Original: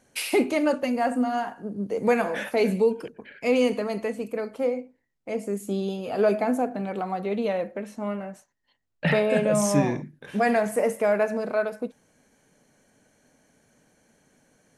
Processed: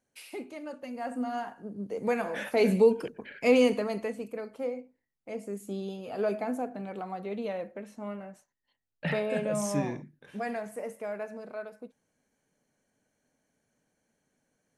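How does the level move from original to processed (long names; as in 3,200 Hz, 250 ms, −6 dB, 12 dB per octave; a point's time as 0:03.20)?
0:00.66 −18 dB
0:01.29 −7 dB
0:02.22 −7 dB
0:02.77 +0.5 dB
0:03.50 +0.5 dB
0:04.42 −8 dB
0:09.88 −8 dB
0:10.73 −14 dB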